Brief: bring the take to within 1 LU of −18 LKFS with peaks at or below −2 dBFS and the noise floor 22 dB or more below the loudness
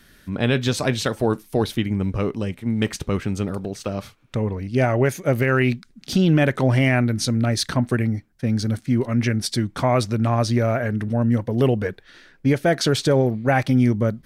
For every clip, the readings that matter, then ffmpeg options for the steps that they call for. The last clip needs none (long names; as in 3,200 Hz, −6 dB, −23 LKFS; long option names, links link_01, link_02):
integrated loudness −21.5 LKFS; sample peak −8.5 dBFS; target loudness −18.0 LKFS
→ -af "volume=3.5dB"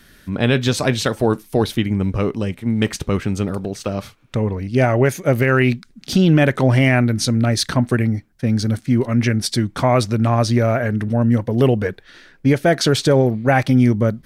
integrated loudness −18.0 LKFS; sample peak −5.0 dBFS; background noise floor −50 dBFS